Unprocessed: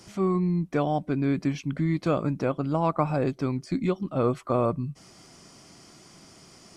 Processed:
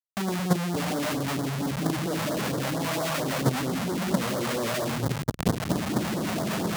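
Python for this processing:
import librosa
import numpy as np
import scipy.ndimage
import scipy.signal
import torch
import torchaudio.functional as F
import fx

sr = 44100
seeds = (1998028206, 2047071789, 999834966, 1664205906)

y = fx.wiener(x, sr, points=25)
y = fx.recorder_agc(y, sr, target_db=-19.0, rise_db_per_s=16.0, max_gain_db=30)
y = fx.hum_notches(y, sr, base_hz=50, count=5)
y = fx.room_flutter(y, sr, wall_m=8.9, rt60_s=0.3)
y = fx.rev_freeverb(y, sr, rt60_s=0.56, hf_ratio=0.35, predelay_ms=115, drr_db=0.0)
y = fx.dynamic_eq(y, sr, hz=210.0, q=3.6, threshold_db=-42.0, ratio=4.0, max_db=5)
y = scipy.signal.sosfilt(scipy.signal.butter(2, 6000.0, 'lowpass', fs=sr, output='sos'), y)
y = fx.high_shelf(y, sr, hz=3100.0, db=-4.5)
y = fx.schmitt(y, sr, flips_db=-37.0)
y = fx.filter_lfo_notch(y, sr, shape='sine', hz=4.4, low_hz=300.0, high_hz=2700.0, q=0.86)
y = fx.level_steps(y, sr, step_db=12)
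y = scipy.signal.sosfilt(scipy.signal.butter(2, 130.0, 'highpass', fs=sr, output='sos'), y)
y = F.gain(torch.from_numpy(y), 8.5).numpy()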